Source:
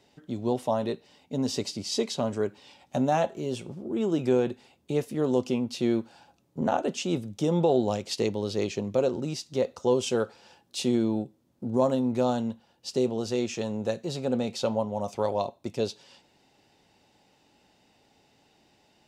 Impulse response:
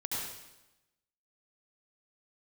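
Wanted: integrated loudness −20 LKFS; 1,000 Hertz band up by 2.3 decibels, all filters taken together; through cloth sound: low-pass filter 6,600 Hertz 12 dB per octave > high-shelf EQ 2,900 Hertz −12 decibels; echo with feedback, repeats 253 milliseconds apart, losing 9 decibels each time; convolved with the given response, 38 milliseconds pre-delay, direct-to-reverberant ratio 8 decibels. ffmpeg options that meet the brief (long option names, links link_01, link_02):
-filter_complex "[0:a]equalizer=frequency=1000:width_type=o:gain=4.5,aecho=1:1:253|506|759|1012:0.355|0.124|0.0435|0.0152,asplit=2[link_01][link_02];[1:a]atrim=start_sample=2205,adelay=38[link_03];[link_02][link_03]afir=irnorm=-1:irlink=0,volume=-12dB[link_04];[link_01][link_04]amix=inputs=2:normalize=0,lowpass=6600,highshelf=frequency=2900:gain=-12,volume=7.5dB"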